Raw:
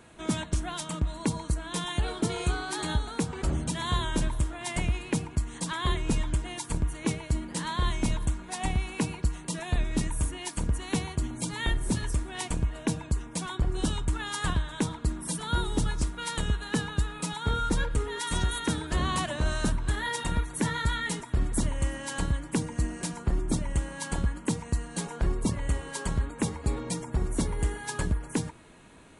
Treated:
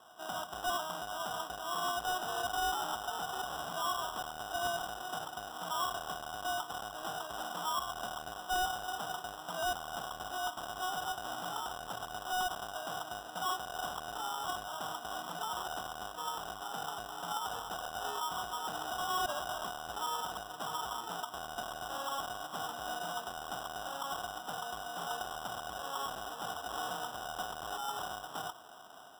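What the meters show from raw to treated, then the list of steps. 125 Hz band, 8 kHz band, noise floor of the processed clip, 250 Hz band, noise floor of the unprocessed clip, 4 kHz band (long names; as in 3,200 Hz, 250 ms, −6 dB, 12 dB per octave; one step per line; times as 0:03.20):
−26.5 dB, −8.5 dB, −47 dBFS, −20.5 dB, −45 dBFS, −3.0 dB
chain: each half-wave held at its own peak
high-pass filter 280 Hz 6 dB per octave
automatic gain control gain up to 5.5 dB
brickwall limiter −18.5 dBFS, peak gain reduction 13 dB
formant resonators in series a
decimation without filtering 20×
soft clipping −36.5 dBFS, distortion −11 dB
level +7 dB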